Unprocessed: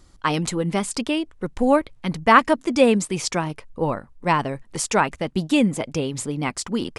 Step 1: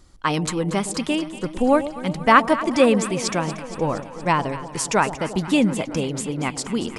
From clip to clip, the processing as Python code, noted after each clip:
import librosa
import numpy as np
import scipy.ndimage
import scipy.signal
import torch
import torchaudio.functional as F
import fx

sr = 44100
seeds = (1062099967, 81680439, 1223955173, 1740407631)

y = fx.echo_alternate(x, sr, ms=117, hz=840.0, feedback_pct=82, wet_db=-12.0)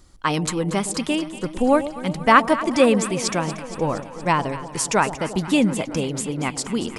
y = fx.high_shelf(x, sr, hz=9000.0, db=4.5)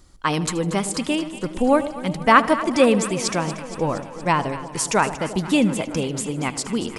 y = fx.echo_feedback(x, sr, ms=77, feedback_pct=53, wet_db=-19)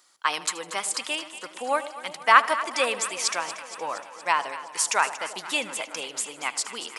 y = scipy.signal.sosfilt(scipy.signal.butter(2, 950.0, 'highpass', fs=sr, output='sos'), x)